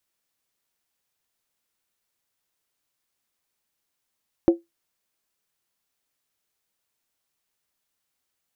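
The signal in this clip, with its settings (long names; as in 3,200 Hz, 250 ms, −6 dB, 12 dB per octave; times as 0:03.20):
struck skin, lowest mode 338 Hz, decay 0.17 s, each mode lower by 10.5 dB, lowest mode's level −8 dB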